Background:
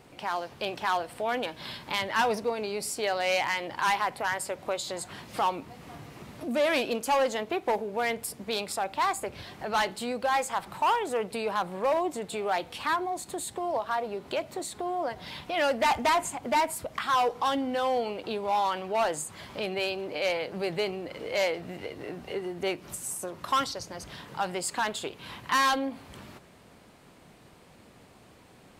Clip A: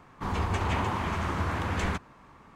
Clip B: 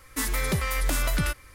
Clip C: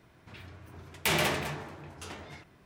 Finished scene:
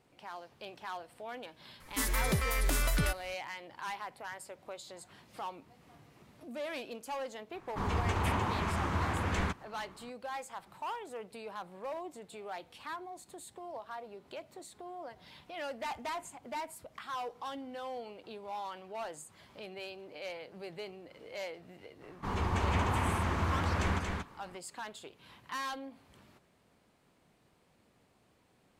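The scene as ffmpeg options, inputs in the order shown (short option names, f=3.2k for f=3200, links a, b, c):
-filter_complex "[1:a]asplit=2[a][b];[0:a]volume=-14dB[c];[b]aecho=1:1:231:0.668[d];[2:a]atrim=end=1.54,asetpts=PTS-STARTPTS,volume=-4.5dB,afade=t=in:d=0.004:c=hsin,afade=t=out:st=1.536:d=0.004:c=hsin,adelay=1800[e];[a]atrim=end=2.55,asetpts=PTS-STARTPTS,volume=-3dB,afade=t=in:d=0.004:c=hsin,afade=t=out:st=2.546:d=0.004:c=hsin,adelay=7550[f];[d]atrim=end=2.55,asetpts=PTS-STARTPTS,volume=-4dB,afade=t=in:d=0.004:c=hsin,afade=t=out:st=2.546:d=0.004:c=hsin,adelay=22020[g];[c][e][f][g]amix=inputs=4:normalize=0"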